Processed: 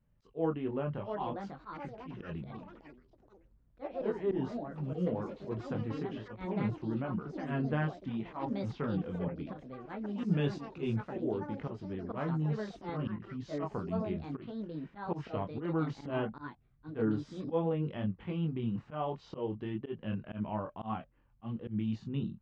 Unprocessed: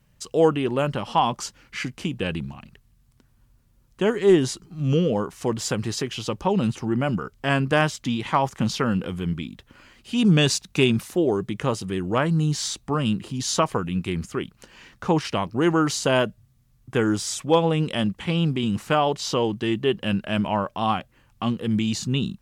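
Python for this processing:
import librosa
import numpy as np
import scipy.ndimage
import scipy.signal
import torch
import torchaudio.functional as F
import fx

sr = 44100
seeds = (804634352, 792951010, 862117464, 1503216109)

y = fx.chorus_voices(x, sr, voices=6, hz=0.24, base_ms=23, depth_ms=4.9, mix_pct=40)
y = fx.auto_swell(y, sr, attack_ms=107.0)
y = fx.echo_pitch(y, sr, ms=785, semitones=5, count=3, db_per_echo=-6.0)
y = fx.spacing_loss(y, sr, db_at_10k=43)
y = y * 10.0 ** (-7.0 / 20.0)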